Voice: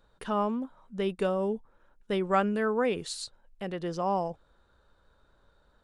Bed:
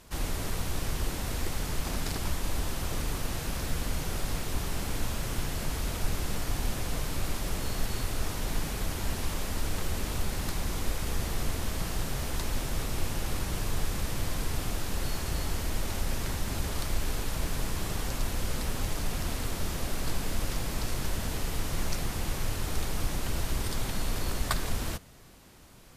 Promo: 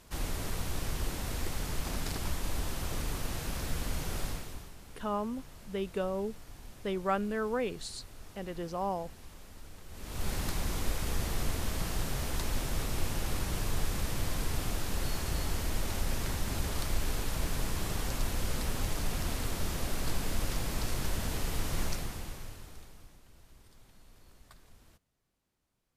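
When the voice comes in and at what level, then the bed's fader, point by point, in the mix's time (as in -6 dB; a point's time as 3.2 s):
4.75 s, -5.0 dB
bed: 4.25 s -3 dB
4.76 s -18.5 dB
9.86 s -18.5 dB
10.28 s -1.5 dB
21.84 s -1.5 dB
23.24 s -27.5 dB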